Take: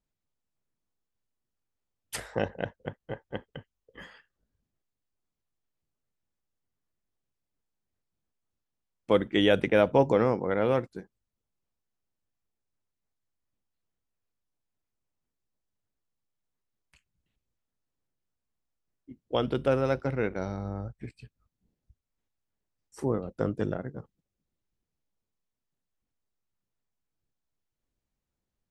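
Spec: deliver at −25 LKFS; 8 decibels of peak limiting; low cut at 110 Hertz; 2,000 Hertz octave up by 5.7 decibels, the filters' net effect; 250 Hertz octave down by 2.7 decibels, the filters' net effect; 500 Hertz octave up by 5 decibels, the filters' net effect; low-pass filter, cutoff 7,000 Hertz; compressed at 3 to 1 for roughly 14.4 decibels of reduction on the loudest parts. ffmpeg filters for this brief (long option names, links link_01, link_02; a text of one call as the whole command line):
ffmpeg -i in.wav -af "highpass=110,lowpass=7000,equalizer=frequency=250:width_type=o:gain=-6,equalizer=frequency=500:width_type=o:gain=6.5,equalizer=frequency=2000:width_type=o:gain=7,acompressor=threshold=-33dB:ratio=3,volume=14dB,alimiter=limit=-10.5dB:level=0:latency=1" out.wav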